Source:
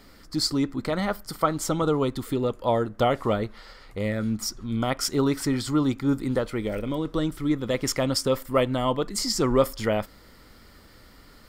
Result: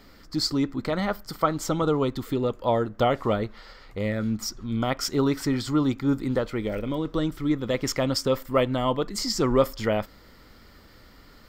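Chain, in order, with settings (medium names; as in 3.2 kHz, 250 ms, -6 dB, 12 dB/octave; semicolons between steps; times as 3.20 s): peaking EQ 10 kHz -10.5 dB 0.52 oct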